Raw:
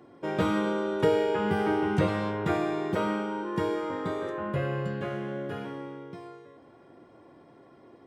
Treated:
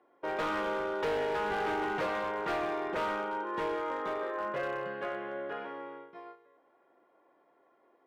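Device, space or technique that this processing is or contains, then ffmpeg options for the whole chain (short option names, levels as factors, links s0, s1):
walkie-talkie: -af "highpass=550,lowpass=2300,asoftclip=type=hard:threshold=0.0299,agate=range=0.316:threshold=0.00398:ratio=16:detection=peak,volume=1.26"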